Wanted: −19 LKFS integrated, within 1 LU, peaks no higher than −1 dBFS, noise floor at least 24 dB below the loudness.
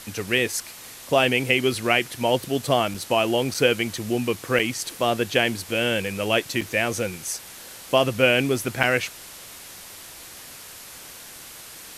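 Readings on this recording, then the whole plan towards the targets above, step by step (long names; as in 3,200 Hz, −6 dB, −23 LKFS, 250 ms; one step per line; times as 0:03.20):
number of dropouts 5; longest dropout 4.9 ms; background noise floor −42 dBFS; target noise floor −47 dBFS; integrated loudness −23.0 LKFS; sample peak −3.0 dBFS; target loudness −19.0 LKFS
→ repair the gap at 0:02.94/0:03.54/0:04.59/0:06.61/0:08.83, 4.9 ms
broadband denoise 6 dB, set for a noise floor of −42 dBFS
level +4 dB
brickwall limiter −1 dBFS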